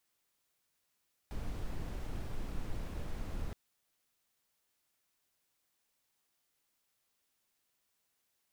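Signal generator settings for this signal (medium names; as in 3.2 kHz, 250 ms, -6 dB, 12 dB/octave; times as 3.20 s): noise brown, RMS -37.5 dBFS 2.22 s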